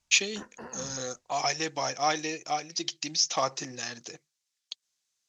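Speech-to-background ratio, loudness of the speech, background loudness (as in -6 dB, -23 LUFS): 17.0 dB, -30.0 LUFS, -47.0 LUFS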